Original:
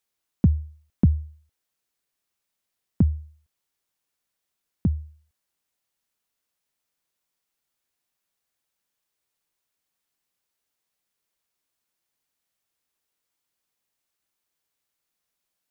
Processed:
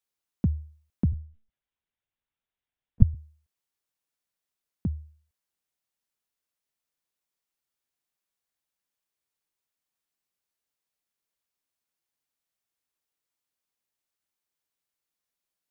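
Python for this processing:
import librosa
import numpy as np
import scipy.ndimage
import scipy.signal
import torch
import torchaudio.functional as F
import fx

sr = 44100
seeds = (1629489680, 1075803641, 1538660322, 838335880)

y = fx.lpc_monotone(x, sr, seeds[0], pitch_hz=220.0, order=10, at=(1.12, 3.15))
y = F.gain(torch.from_numpy(y), -6.5).numpy()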